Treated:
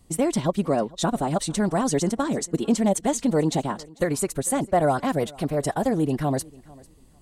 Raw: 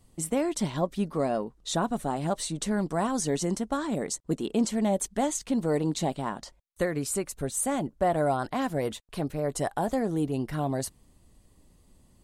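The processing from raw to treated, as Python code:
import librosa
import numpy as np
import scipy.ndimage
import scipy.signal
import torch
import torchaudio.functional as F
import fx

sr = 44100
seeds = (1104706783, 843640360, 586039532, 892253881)

p1 = fx.stretch_vocoder(x, sr, factor=0.59)
p2 = p1 + fx.echo_feedback(p1, sr, ms=447, feedback_pct=21, wet_db=-23.5, dry=0)
y = F.gain(torch.from_numpy(p2), 5.5).numpy()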